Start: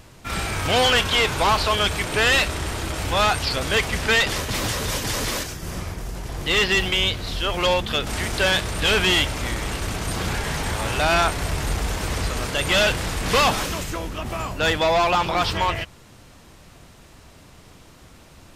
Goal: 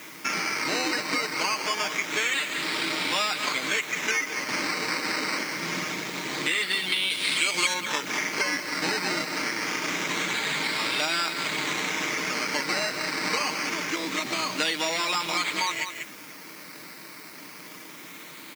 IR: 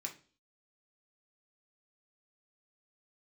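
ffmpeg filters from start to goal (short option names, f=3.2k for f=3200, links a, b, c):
-filter_complex "[0:a]aecho=1:1:6.5:0.49,acrusher=samples=10:mix=1:aa=0.000001:lfo=1:lforange=6:lforate=0.25,highpass=f=220:w=0.5412,highpass=f=220:w=1.3066,equalizer=f=480:t=q:w=4:g=-5,equalizer=f=710:t=q:w=4:g=-9,equalizer=f=2.2k:t=q:w=4:g=10,lowpass=f=6.6k:w=0.5412,lowpass=f=6.6k:w=1.3066,aecho=1:1:190:0.2,acompressor=threshold=-30dB:ratio=6,asettb=1/sr,asplit=3[a][b][c];[a]atrim=end=7.104[d];[b]atrim=start=7.1:end=7.74,asetpts=PTS-STARTPTS,afade=t=in:d=0.004:c=qsin,afade=t=out:st=0.636:d=0.004:c=qsin,highshelf=f=5k:g=11.5[e];[c]atrim=start=7.736[f];[d][e]acrossfade=d=0.004:c1=hsin:c2=qsin[g];[g][f]acrossfade=d=0.004:c1=qsin:c2=hsin,acrusher=bits=9:mix=0:aa=0.000001,aexciter=amount=1.4:drive=9.1:freq=3.7k,volume=4.5dB"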